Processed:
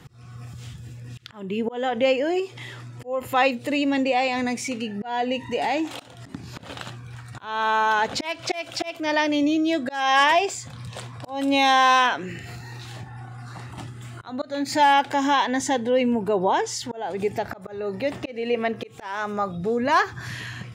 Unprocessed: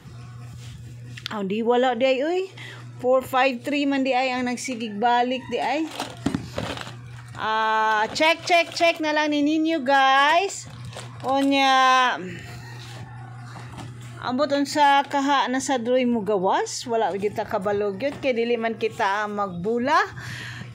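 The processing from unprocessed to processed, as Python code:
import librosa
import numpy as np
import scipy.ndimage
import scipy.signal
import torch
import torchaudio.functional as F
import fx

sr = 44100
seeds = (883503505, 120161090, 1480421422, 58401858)

y = fx.dynamic_eq(x, sr, hz=6600.0, q=1.2, threshold_db=-44.0, ratio=4.0, max_db=7, at=(9.61, 10.24))
y = fx.auto_swell(y, sr, attack_ms=286.0)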